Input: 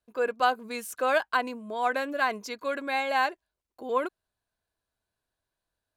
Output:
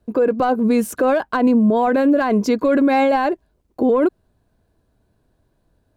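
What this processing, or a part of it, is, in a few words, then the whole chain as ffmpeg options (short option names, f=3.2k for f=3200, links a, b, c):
mastering chain: -af "equalizer=f=250:t=o:w=1.8:g=4,acompressor=threshold=-26dB:ratio=2.5,asoftclip=type=tanh:threshold=-18dB,tiltshelf=f=750:g=9.5,alimiter=level_in=25dB:limit=-1dB:release=50:level=0:latency=1,volume=-8dB"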